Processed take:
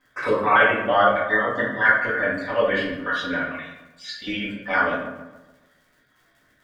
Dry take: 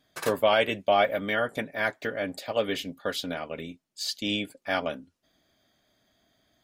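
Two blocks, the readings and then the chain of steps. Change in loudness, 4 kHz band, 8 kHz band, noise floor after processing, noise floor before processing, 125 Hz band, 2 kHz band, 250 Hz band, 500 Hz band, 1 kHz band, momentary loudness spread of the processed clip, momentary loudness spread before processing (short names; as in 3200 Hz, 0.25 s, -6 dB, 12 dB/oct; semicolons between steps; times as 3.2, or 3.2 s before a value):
+7.0 dB, -1.5 dB, under -10 dB, -63 dBFS, -75 dBFS, +4.0 dB, +11.5 dB, +4.5 dB, +3.5 dB, +8.0 dB, 18 LU, 12 LU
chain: random spectral dropouts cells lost 36%; LPF 4100 Hz 12 dB/oct; band shelf 1400 Hz +11 dB 1.3 oct; crackle 67/s -48 dBFS; on a send: darkening echo 0.14 s, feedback 46%, low-pass 2500 Hz, level -12 dB; on the sum: shoebox room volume 110 m³, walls mixed, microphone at 2 m; gain -4.5 dB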